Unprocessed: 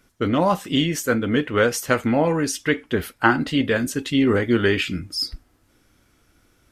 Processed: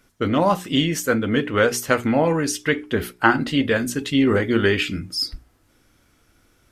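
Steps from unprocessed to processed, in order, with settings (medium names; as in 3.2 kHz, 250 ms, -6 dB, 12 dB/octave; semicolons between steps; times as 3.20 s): hum notches 60/120/180/240/300/360/420 Hz; trim +1 dB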